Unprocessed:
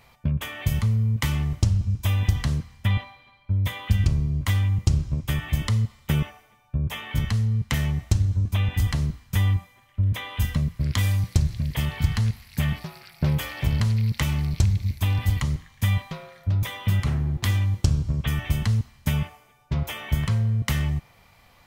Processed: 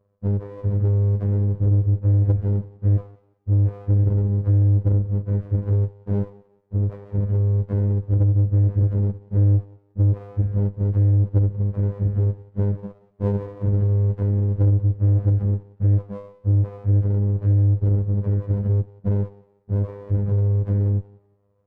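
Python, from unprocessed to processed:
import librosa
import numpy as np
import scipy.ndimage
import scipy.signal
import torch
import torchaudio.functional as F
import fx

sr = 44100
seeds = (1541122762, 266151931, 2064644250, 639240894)

y = fx.partial_stretch(x, sr, pct=88)
y = scipy.signal.sosfilt(scipy.signal.butter(2, 51.0, 'highpass', fs=sr, output='sos'), y)
y = fx.low_shelf(y, sr, hz=170.0, db=11.0)
y = fx.leveller(y, sr, passes=2)
y = fx.robotise(y, sr, hz=101.0)
y = fx.lowpass_res(y, sr, hz=490.0, q=4.7)
y = fx.echo_thinned(y, sr, ms=181, feedback_pct=39, hz=350.0, wet_db=-18.5)
y = fx.running_max(y, sr, window=17)
y = y * librosa.db_to_amplitude(-7.0)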